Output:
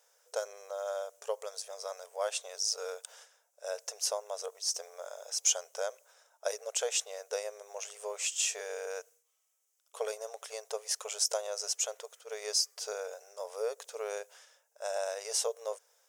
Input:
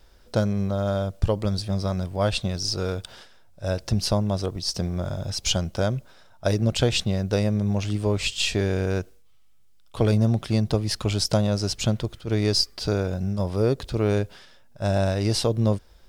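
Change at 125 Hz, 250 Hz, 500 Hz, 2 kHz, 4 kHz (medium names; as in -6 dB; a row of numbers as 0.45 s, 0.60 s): under -40 dB, under -40 dB, -10.0 dB, -9.5 dB, -9.0 dB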